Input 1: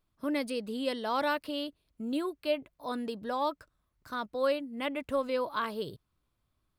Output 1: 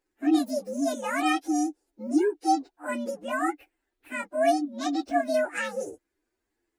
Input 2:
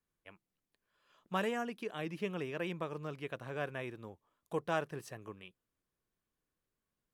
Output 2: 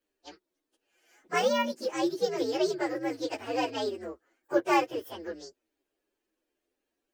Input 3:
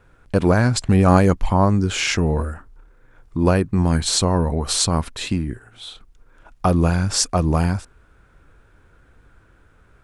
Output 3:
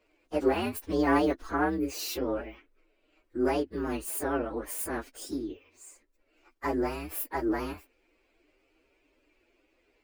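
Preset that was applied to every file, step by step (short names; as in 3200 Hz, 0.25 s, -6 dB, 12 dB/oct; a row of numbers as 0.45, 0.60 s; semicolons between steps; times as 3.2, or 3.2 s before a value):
inharmonic rescaling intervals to 129%; resonant low shelf 220 Hz -12.5 dB, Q 3; normalise peaks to -12 dBFS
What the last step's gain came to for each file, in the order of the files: +6.0, +11.0, -8.0 dB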